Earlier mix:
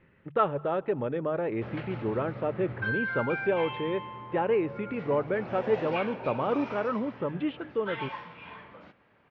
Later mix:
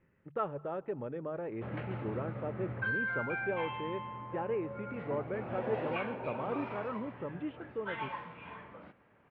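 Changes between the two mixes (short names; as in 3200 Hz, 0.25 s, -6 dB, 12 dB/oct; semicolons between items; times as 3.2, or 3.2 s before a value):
speech -8.0 dB; master: add air absorption 350 m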